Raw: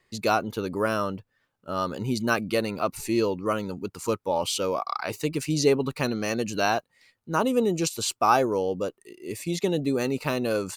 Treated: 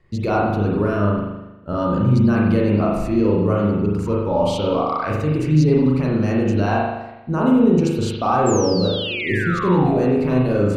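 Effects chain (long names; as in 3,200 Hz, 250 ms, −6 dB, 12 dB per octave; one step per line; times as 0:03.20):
RIAA equalisation playback
brickwall limiter −16 dBFS, peak gain reduction 11 dB
sound drawn into the spectrogram fall, 0:08.46–0:10.02, 550–7,700 Hz −33 dBFS
spring reverb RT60 1 s, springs 39 ms, chirp 60 ms, DRR −3.5 dB
level +2.5 dB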